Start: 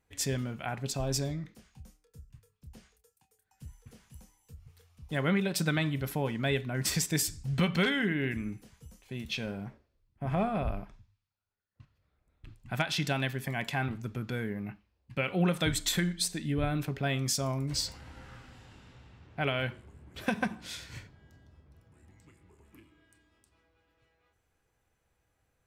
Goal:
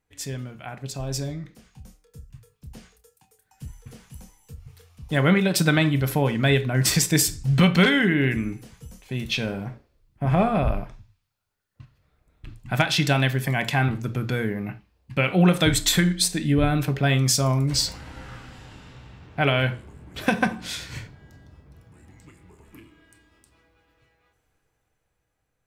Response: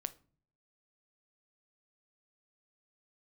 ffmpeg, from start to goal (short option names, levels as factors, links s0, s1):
-filter_complex "[0:a]dynaudnorm=f=310:g=11:m=3.55[s0];[1:a]atrim=start_sample=2205,afade=t=out:st=0.14:d=0.01,atrim=end_sample=6615[s1];[s0][s1]afir=irnorm=-1:irlink=0"